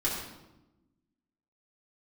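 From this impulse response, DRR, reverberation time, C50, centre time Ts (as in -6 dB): -7.0 dB, 1.0 s, 2.0 dB, 54 ms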